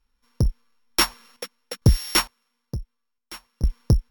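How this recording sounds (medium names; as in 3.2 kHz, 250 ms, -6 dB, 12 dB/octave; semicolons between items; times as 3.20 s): a buzz of ramps at a fixed pitch in blocks of 8 samples; random-step tremolo 2.2 Hz, depth 90%; Vorbis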